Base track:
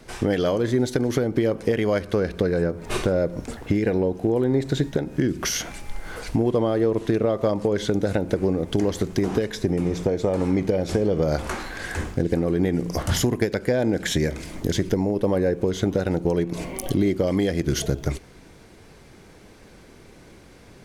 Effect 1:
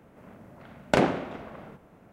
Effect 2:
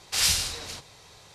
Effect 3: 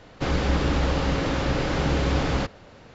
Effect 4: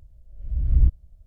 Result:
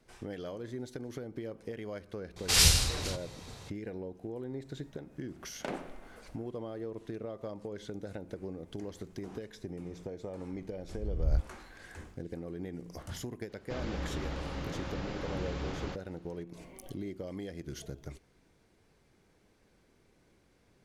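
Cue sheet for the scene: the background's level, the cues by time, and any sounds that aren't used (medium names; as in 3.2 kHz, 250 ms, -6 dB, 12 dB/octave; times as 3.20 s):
base track -19 dB
2.36 s: add 2 -0.5 dB + bass shelf 260 Hz +11.5 dB
4.71 s: add 1 -16 dB + high-pass 150 Hz
10.51 s: add 4 -11 dB
13.49 s: add 3 -14.5 dB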